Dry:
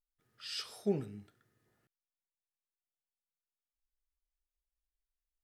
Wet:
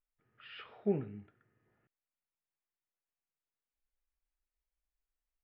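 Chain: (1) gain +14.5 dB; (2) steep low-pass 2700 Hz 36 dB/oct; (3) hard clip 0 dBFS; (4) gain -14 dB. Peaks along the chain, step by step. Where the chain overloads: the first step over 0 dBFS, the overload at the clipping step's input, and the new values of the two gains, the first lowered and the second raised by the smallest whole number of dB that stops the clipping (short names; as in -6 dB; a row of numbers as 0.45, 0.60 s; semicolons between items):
-5.5, -5.5, -5.5, -19.5 dBFS; no overload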